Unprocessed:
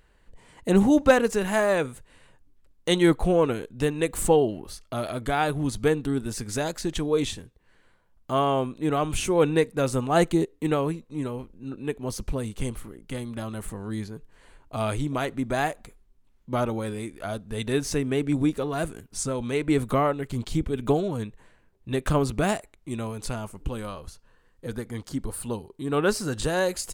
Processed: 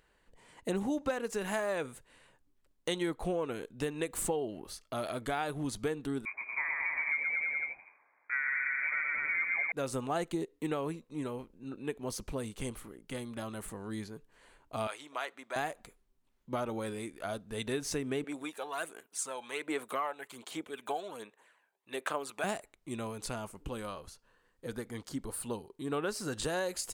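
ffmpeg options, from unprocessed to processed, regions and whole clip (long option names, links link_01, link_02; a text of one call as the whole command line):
ffmpeg -i in.wav -filter_complex "[0:a]asettb=1/sr,asplit=3[link_01][link_02][link_03];[link_01]atrim=end=6.254[link_04];[link_02]atrim=start=6.25:end=9.72,asetpts=PTS-STARTPTS,afade=type=in:duration=0.004:curve=qsin,afade=type=out:start_time=3.466:duration=0.004:curve=qsin,highpass=250,aecho=1:1:120|228|325.2|412.7|491.4:0.794|0.631|0.501|0.398|0.316,atrim=end_sample=153027,lowpass=frequency=2200:width_type=q:width=0.5098,lowpass=frequency=2200:width_type=q:width=0.6013,lowpass=frequency=2200:width_type=q:width=0.9,lowpass=frequency=2200:width_type=q:width=2.563,afreqshift=-2600[link_05];[link_03]atrim=start=9.716[link_06];[link_04][link_05]acrossfade=duration=0.004:curve1=hsin:curve2=qsin[link_07];[link_07][link_06]acrossfade=duration=0.004:curve1=qsin:curve2=hsin,asettb=1/sr,asplit=3[link_08][link_09][link_10];[link_08]atrim=end=14.874[link_11];[link_09]atrim=start=14.87:end=15.56,asetpts=PTS-STARTPTS,afade=type=in:duration=0.004:curve=qsin,afade=type=out:start_time=0.686:duration=0.004:curve=qsin,highpass=810,highshelf=frequency=6000:gain=-7.5[link_12];[link_10]atrim=start=15.556[link_13];[link_11][link_12]acrossfade=duration=0.004:curve1=hsin:curve2=qsin[link_14];[link_14][link_13]acrossfade=duration=0.004:curve1=qsin:curve2=hsin,asettb=1/sr,asplit=3[link_15][link_16][link_17];[link_15]atrim=end=18.244[link_18];[link_16]atrim=start=18.24:end=22.44,asetpts=PTS-STARTPTS,afade=type=in:duration=0.004:curve=qsin,afade=type=out:start_time=4.196:duration=0.004:curve=qsin,highpass=600,equalizer=frequency=5100:width_type=o:width=0.61:gain=-6,aphaser=in_gain=1:out_gain=1:delay=1.3:decay=0.46:speed=1.3:type=sinusoidal[link_19];[link_17]atrim=start=22.436[link_20];[link_18][link_19]acrossfade=duration=0.004:curve1=hsin:curve2=qsin[link_21];[link_21][link_20]acrossfade=duration=0.004:curve1=qsin:curve2=hsin,lowshelf=frequency=160:gain=-10.5,acompressor=threshold=-26dB:ratio=6,volume=-4dB" out.wav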